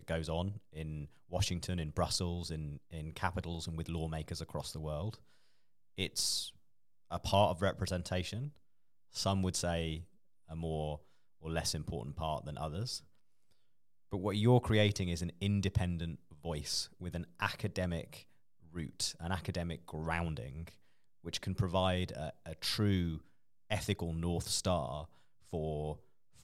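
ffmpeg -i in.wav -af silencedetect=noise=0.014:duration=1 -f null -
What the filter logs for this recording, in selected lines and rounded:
silence_start: 12.97
silence_end: 14.13 | silence_duration: 1.16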